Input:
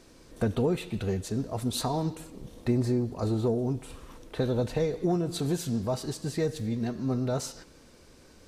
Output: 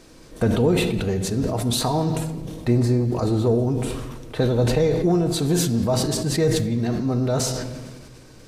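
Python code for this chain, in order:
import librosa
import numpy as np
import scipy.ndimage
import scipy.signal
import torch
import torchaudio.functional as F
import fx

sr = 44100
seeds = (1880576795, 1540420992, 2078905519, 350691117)

y = fx.room_shoebox(x, sr, seeds[0], volume_m3=1200.0, walls='mixed', distance_m=0.55)
y = fx.sustainer(y, sr, db_per_s=32.0)
y = y * librosa.db_to_amplitude(6.0)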